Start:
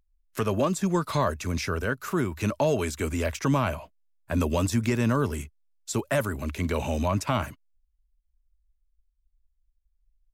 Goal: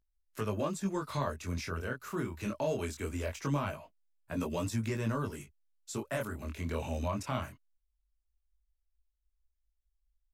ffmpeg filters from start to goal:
-af "flanger=delay=18:depth=6.5:speed=0.22,volume=0.501"

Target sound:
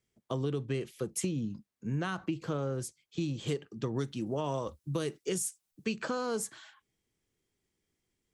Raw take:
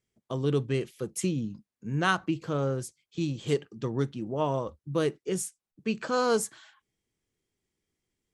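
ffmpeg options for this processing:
-filter_complex "[0:a]asettb=1/sr,asplit=3[s0][s1][s2];[s0]atrim=end=3.964[s3];[s1]atrim=start=3.96:end=5.95,asetpts=PTS-STARTPTS,afade=t=in:d=0.004:c=qsin,afade=t=out:st=1.986:d=0.004:c=qsin,highshelf=f=3300:g=11.5[s4];[s2]atrim=start=5.946[s5];[s3][s4]acrossfade=d=0.004:c1=hsin:c2=qsin[s6];[s6][s5]acrossfade=d=0.004:c1=qsin:c2=hsin,acrossover=split=300[s7][s8];[s8]alimiter=limit=0.0891:level=0:latency=1:release=54[s9];[s7][s9]amix=inputs=2:normalize=0,acompressor=threshold=0.0316:ratio=6,volume=1.12"

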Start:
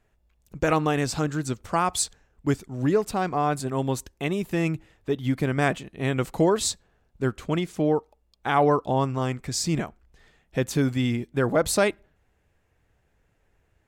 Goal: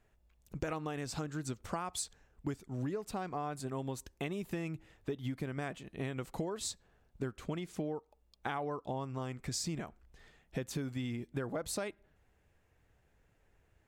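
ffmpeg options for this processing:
-af "acompressor=threshold=0.0282:ratio=12,volume=0.708"

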